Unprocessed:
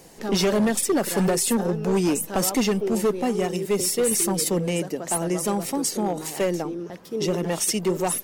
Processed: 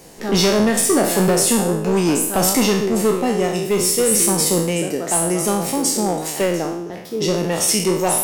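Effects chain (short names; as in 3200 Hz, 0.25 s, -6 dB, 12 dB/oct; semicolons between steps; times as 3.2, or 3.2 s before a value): spectral trails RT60 0.70 s; gain +3.5 dB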